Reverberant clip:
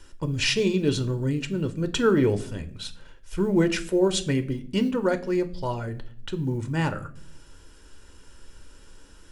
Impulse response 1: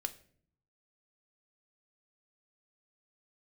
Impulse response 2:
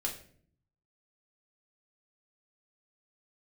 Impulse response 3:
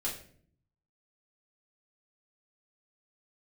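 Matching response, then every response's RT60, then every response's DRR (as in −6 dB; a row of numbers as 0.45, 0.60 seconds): 1; 0.55, 0.55, 0.55 seconds; 9.0, −0.5, −5.0 decibels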